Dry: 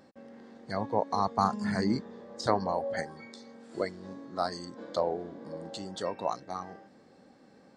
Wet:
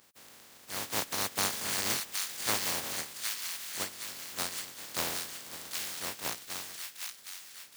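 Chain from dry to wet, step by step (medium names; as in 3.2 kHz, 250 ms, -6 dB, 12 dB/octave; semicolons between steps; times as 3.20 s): spectral contrast reduction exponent 0.13; high-pass 72 Hz; on a send: feedback echo behind a high-pass 766 ms, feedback 45%, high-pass 1.7 kHz, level -3 dB; on the sum: trim -4 dB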